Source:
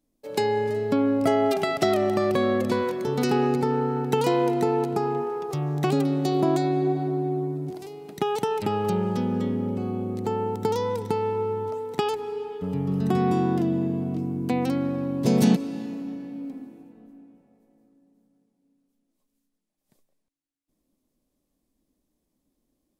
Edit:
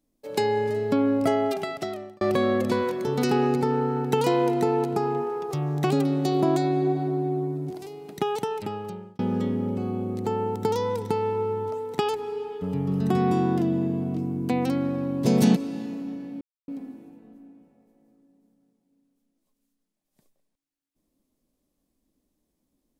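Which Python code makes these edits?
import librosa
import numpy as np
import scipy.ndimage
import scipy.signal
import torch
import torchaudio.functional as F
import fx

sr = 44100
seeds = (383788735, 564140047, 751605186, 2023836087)

y = fx.edit(x, sr, fx.fade_out_span(start_s=1.16, length_s=1.05),
    fx.fade_out_span(start_s=8.17, length_s=1.02),
    fx.insert_silence(at_s=16.41, length_s=0.27), tone=tone)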